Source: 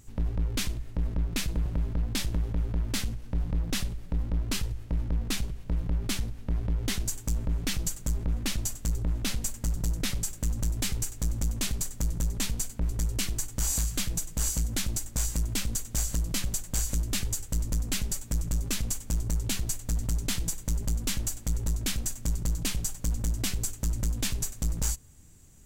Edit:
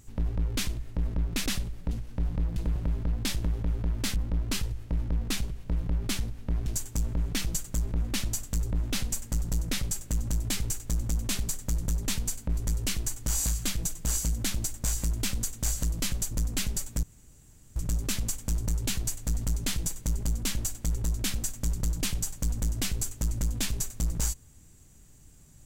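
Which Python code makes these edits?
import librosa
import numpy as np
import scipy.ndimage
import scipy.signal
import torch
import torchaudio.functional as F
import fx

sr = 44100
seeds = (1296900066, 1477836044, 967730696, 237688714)

y = fx.edit(x, sr, fx.swap(start_s=1.46, length_s=1.6, other_s=3.71, other_length_s=0.45),
    fx.cut(start_s=6.66, length_s=0.32),
    fx.cut(start_s=16.63, length_s=1.03),
    fx.insert_room_tone(at_s=18.38, length_s=0.73), tone=tone)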